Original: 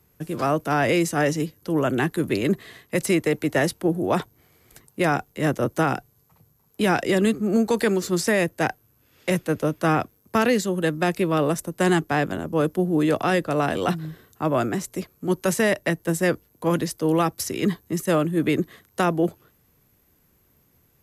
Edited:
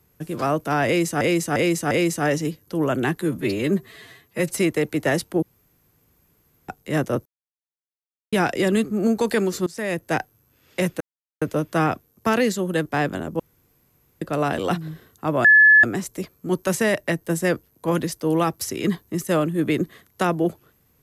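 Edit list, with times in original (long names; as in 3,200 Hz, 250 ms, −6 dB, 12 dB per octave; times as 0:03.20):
0:00.86–0:01.21: repeat, 4 plays
0:02.16–0:03.07: time-stretch 1.5×
0:03.92–0:05.18: fill with room tone
0:05.75–0:06.82: silence
0:08.16–0:08.57: fade in linear, from −22.5 dB
0:09.50: splice in silence 0.41 s
0:10.94–0:12.03: remove
0:12.57–0:13.39: fill with room tone
0:14.62: insert tone 1,720 Hz −8.5 dBFS 0.39 s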